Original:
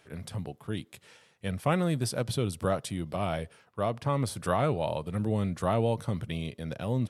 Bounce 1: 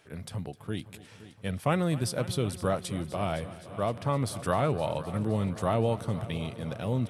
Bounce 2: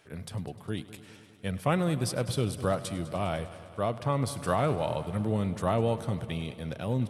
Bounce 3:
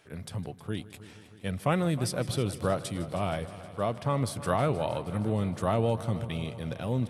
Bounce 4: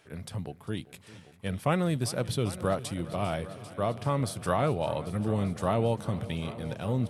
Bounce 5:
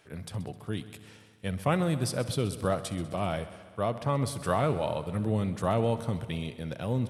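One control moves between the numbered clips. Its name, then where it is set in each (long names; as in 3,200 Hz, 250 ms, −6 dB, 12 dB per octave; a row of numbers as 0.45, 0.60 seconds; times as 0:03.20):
echo machine with several playback heads, delay time: 258, 101, 157, 396, 65 milliseconds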